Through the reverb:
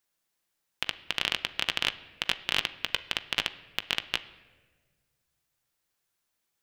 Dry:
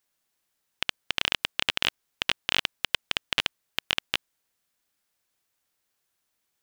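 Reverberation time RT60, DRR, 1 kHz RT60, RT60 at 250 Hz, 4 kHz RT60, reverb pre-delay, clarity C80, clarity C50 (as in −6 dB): 1.4 s, 9.5 dB, 1.2 s, 1.8 s, 0.95 s, 6 ms, 17.5 dB, 15.5 dB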